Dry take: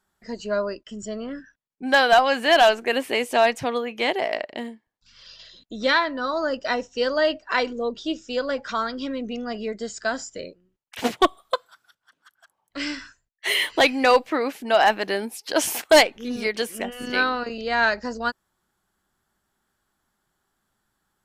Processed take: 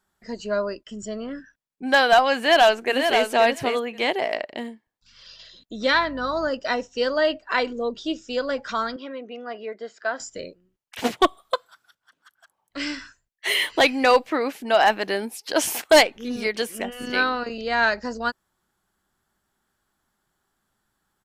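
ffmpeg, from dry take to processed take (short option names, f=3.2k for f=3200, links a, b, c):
-filter_complex "[0:a]asplit=2[a][b];[b]afade=t=in:st=2.36:d=0.01,afade=t=out:st=3.26:d=0.01,aecho=0:1:530|1060:0.501187|0.0501187[c];[a][c]amix=inputs=2:normalize=0,asettb=1/sr,asplit=3[d][e][f];[d]atrim=end=5.934[g];[e]atrim=start=5.93:end=6.49,asetpts=PTS-STARTPTS,afade=t=in:d=0.004:c=qsin,afade=t=out:st=0.556:d=0.004:c=qsin,aeval=exprs='val(0)+0.00708*(sin(2*PI*50*n/s)+sin(2*PI*2*50*n/s)/2+sin(2*PI*3*50*n/s)/3+sin(2*PI*4*50*n/s)/4+sin(2*PI*5*50*n/s)/5)':c=same[h];[f]atrim=start=6.486[i];[g][h]acrossfade=d=0.004:c1=hsin:c2=qsin[j];[j][i]acrossfade=d=0.004:c1=qsin:c2=hsin,asettb=1/sr,asplit=3[k][l][m];[k]atrim=end=7.094[n];[l]atrim=start=7.09:end=7.7,asetpts=PTS-STARTPTS,afade=t=in:d=0.004:c=qsin,afade=t=out:st=0.606:d=0.004:c=qsin,equalizer=f=5.8k:w=4.5:g=-9.5[o];[m]atrim=start=7.696[p];[n][o]acrossfade=d=0.004:c1=hsin:c2=qsin[q];[q][p]acrossfade=d=0.004:c1=qsin:c2=hsin,asettb=1/sr,asplit=3[r][s][t];[r]atrim=end=8.964[u];[s]atrim=start=8.96:end=10.2,asetpts=PTS-STARTPTS,afade=t=in:d=0.004:c=qsin,afade=t=out:st=1.236:d=0.004:c=qsin,highpass=440,lowpass=2.4k[v];[t]atrim=start=10.196[w];[u][v]acrossfade=d=0.004:c1=hsin:c2=qsin[x];[x][w]acrossfade=d=0.004:c1=qsin:c2=hsin"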